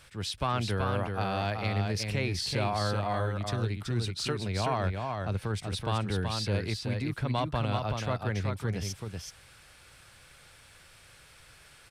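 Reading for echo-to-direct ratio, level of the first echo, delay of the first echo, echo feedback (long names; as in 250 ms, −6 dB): −4.5 dB, −4.5 dB, 378 ms, repeats not evenly spaced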